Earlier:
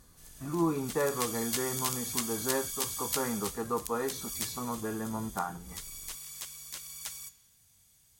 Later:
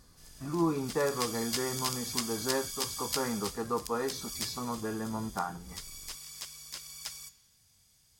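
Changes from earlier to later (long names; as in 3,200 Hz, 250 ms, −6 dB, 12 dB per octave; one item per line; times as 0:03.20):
background: add high-shelf EQ 9,600 Hz −7.5 dB
master: add parametric band 5,000 Hz +9 dB 0.24 octaves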